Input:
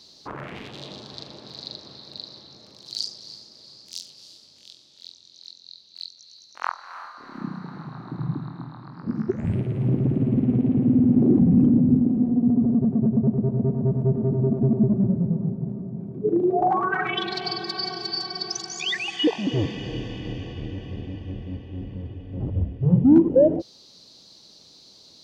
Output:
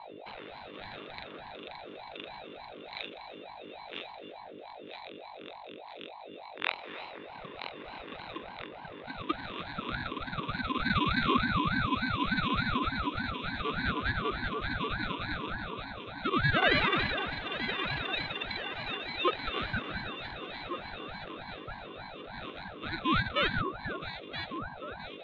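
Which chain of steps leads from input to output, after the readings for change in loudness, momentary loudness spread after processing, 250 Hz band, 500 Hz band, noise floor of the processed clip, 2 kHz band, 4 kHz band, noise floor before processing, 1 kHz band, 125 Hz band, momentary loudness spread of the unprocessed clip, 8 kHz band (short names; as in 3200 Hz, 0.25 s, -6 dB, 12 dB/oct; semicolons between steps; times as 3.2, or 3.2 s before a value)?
-10.5 dB, 17 LU, -16.5 dB, -11.5 dB, -47 dBFS, +4.5 dB, -3.5 dB, -52 dBFS, -1.5 dB, -15.0 dB, 21 LU, n/a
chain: sample sorter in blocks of 16 samples; mistuned SSB +400 Hz 290–2900 Hz; rotary speaker horn 0.7 Hz; hum 50 Hz, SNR 11 dB; on a send: echo with dull and thin repeats by turns 0.486 s, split 1100 Hz, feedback 75%, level -6 dB; on the sum: ring modulator with a swept carrier 630 Hz, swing 45%, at 3.4 Hz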